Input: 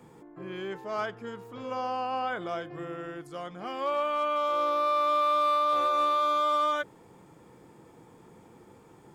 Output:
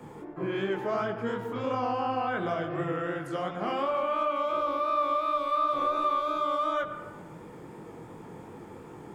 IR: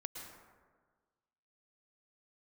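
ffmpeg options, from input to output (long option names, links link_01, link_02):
-filter_complex "[0:a]acrossover=split=270[link_01][link_02];[link_02]acompressor=threshold=-36dB:ratio=6[link_03];[link_01][link_03]amix=inputs=2:normalize=0,flanger=delay=18.5:depth=6.9:speed=2.8,asplit=2[link_04][link_05];[1:a]atrim=start_sample=2205,asetrate=57330,aresample=44100,lowpass=3400[link_06];[link_05][link_06]afir=irnorm=-1:irlink=0,volume=3dB[link_07];[link_04][link_07]amix=inputs=2:normalize=0,volume=7dB"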